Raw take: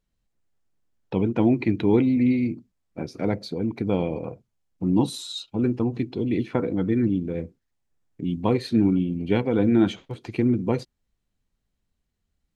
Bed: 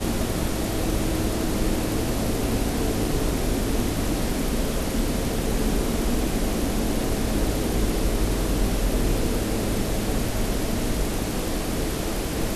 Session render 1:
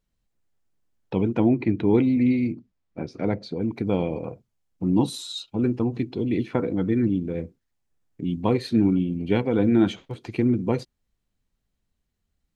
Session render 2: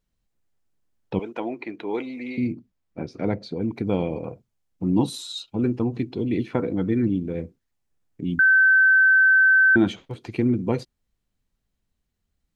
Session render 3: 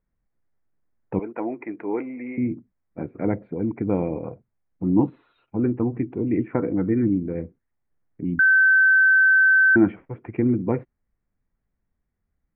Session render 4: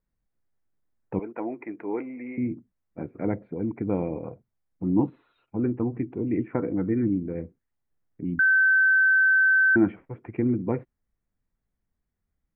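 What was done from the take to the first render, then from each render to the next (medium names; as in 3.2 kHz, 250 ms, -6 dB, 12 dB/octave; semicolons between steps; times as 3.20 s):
1.40–1.95 s: treble shelf 2.8 kHz -9.5 dB; 2.52–3.61 s: distance through air 92 m
1.19–2.38 s: high-pass 560 Hz; 8.39–9.76 s: bleep 1.54 kHz -12.5 dBFS
steep low-pass 2.2 kHz 48 dB/octave; dynamic bell 310 Hz, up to +5 dB, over -38 dBFS, Q 6.2
trim -3.5 dB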